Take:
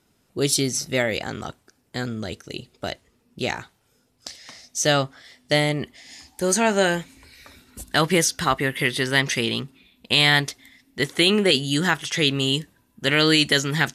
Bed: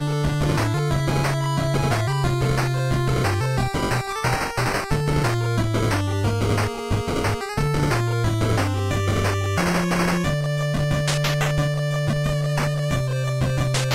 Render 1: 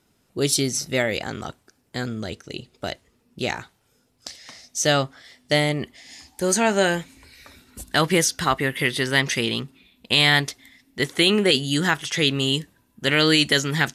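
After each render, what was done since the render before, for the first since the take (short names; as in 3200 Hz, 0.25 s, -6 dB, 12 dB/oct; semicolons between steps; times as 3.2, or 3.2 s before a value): 2.3–2.73 high shelf 12000 Hz -11 dB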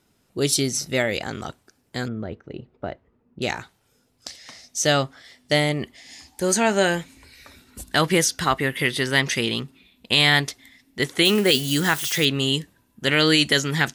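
2.08–3.42 LPF 1300 Hz; 11.25–12.25 switching spikes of -22.5 dBFS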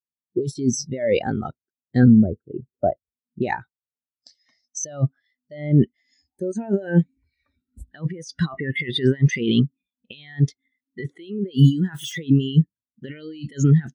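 negative-ratio compressor -27 dBFS, ratio -1; spectral expander 2.5:1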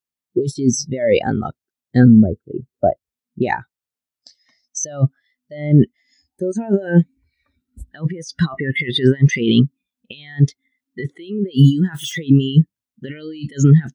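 gain +5 dB; limiter -2 dBFS, peak gain reduction 2.5 dB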